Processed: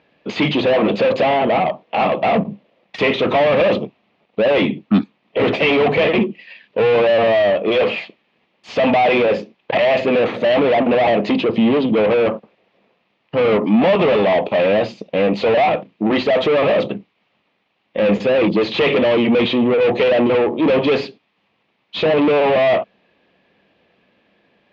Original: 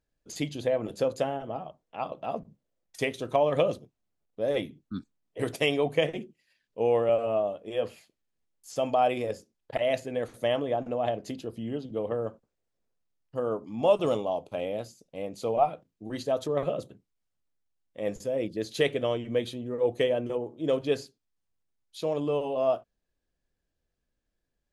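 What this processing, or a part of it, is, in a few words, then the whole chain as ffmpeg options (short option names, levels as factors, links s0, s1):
overdrive pedal into a guitar cabinet: -filter_complex "[0:a]asplit=2[s0][s1];[s1]highpass=f=720:p=1,volume=79.4,asoftclip=type=tanh:threshold=0.335[s2];[s0][s2]amix=inputs=2:normalize=0,lowpass=f=3300:p=1,volume=0.501,highpass=89,equalizer=f=200:t=q:w=4:g=8,equalizer=f=1500:t=q:w=4:g=-9,equalizer=f=2500:t=q:w=4:g=4,lowpass=f=3400:w=0.5412,lowpass=f=3400:w=1.3066,volume=1.26"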